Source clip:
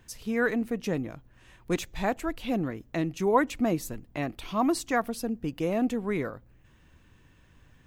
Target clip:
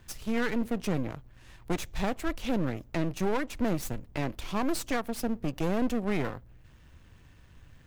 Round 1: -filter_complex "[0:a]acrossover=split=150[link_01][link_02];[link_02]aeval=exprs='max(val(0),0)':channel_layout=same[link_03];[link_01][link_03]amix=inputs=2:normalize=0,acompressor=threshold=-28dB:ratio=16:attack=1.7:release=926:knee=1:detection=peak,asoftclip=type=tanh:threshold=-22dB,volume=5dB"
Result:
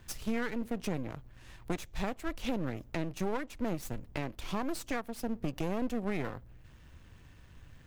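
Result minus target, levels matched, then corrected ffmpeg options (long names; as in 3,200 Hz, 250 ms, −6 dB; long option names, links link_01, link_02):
downward compressor: peak gain reduction +7.5 dB
-filter_complex "[0:a]acrossover=split=150[link_01][link_02];[link_02]aeval=exprs='max(val(0),0)':channel_layout=same[link_03];[link_01][link_03]amix=inputs=2:normalize=0,acompressor=threshold=-20dB:ratio=16:attack=1.7:release=926:knee=1:detection=peak,asoftclip=type=tanh:threshold=-22dB,volume=5dB"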